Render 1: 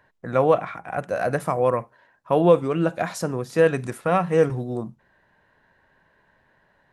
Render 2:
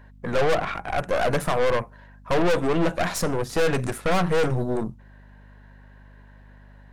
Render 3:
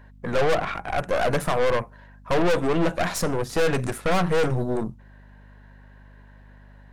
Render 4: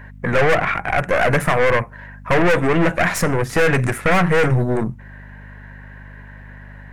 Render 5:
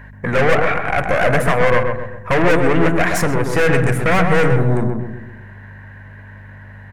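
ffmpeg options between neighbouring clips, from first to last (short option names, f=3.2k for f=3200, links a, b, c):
-af "aeval=exprs='val(0)+0.00251*(sin(2*PI*50*n/s)+sin(2*PI*2*50*n/s)/2+sin(2*PI*3*50*n/s)/3+sin(2*PI*4*50*n/s)/4+sin(2*PI*5*50*n/s)/5)':c=same,aeval=exprs='(tanh(25.1*val(0)+0.75)-tanh(0.75))/25.1':c=same,volume=9dB"
-af anull
-filter_complex "[0:a]equalizer=f=125:t=o:w=1:g=5,equalizer=f=2k:t=o:w=1:g=10,equalizer=f=4k:t=o:w=1:g=-6,asplit=2[a][b];[b]acompressor=threshold=-30dB:ratio=6,volume=-1dB[c];[a][c]amix=inputs=2:normalize=0,volume=2.5dB"
-filter_complex "[0:a]asplit=2[a][b];[b]adelay=129,lowpass=f=1.2k:p=1,volume=-3dB,asplit=2[c][d];[d]adelay=129,lowpass=f=1.2k:p=1,volume=0.48,asplit=2[e][f];[f]adelay=129,lowpass=f=1.2k:p=1,volume=0.48,asplit=2[g][h];[h]adelay=129,lowpass=f=1.2k:p=1,volume=0.48,asplit=2[i][j];[j]adelay=129,lowpass=f=1.2k:p=1,volume=0.48,asplit=2[k][l];[l]adelay=129,lowpass=f=1.2k:p=1,volume=0.48[m];[a][c][e][g][i][k][m]amix=inputs=7:normalize=0"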